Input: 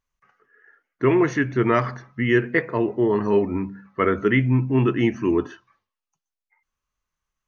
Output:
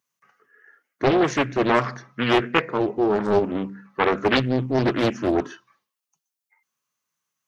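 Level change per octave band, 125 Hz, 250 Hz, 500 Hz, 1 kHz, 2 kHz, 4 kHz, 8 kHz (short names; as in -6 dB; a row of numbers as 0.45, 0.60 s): -5.0 dB, -2.0 dB, 0.0 dB, +3.5 dB, 0.0 dB, +9.5 dB, n/a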